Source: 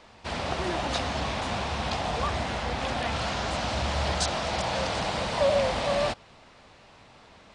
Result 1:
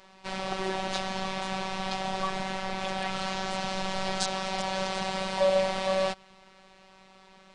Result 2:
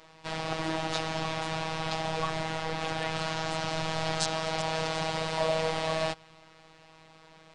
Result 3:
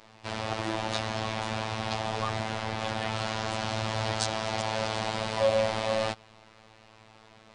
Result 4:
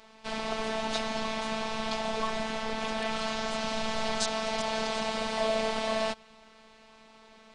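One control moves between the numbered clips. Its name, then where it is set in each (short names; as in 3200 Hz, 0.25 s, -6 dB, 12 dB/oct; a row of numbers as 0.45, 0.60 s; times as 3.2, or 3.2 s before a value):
robotiser, frequency: 190, 160, 110, 220 Hz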